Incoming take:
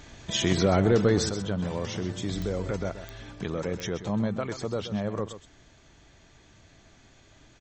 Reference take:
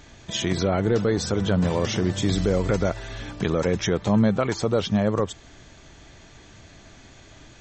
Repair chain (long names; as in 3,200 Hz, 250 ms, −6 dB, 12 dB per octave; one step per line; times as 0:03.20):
click removal
echo removal 129 ms −11.5 dB
level correction +8.5 dB, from 0:01.29